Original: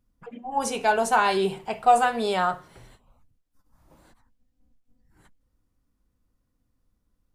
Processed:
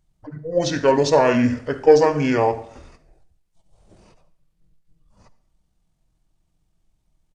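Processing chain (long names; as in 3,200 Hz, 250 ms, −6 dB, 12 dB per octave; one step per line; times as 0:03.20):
pitch shifter −8 semitones
on a send: convolution reverb RT60 0.60 s, pre-delay 54 ms, DRR 15 dB
on the sum: level +5.5 dB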